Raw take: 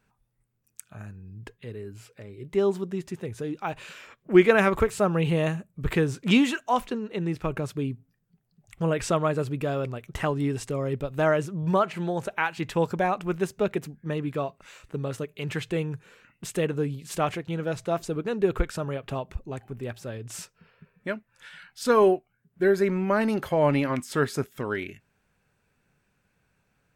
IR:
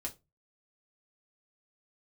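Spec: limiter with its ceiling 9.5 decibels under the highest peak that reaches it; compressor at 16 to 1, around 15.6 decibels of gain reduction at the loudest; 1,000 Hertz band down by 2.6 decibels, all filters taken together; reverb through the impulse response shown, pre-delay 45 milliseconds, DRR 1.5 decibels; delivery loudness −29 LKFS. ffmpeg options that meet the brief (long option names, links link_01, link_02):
-filter_complex "[0:a]equalizer=frequency=1000:width_type=o:gain=-3.5,acompressor=threshold=-27dB:ratio=16,alimiter=limit=-23.5dB:level=0:latency=1,asplit=2[link_01][link_02];[1:a]atrim=start_sample=2205,adelay=45[link_03];[link_02][link_03]afir=irnorm=-1:irlink=0,volume=-1dB[link_04];[link_01][link_04]amix=inputs=2:normalize=0,volume=3.5dB"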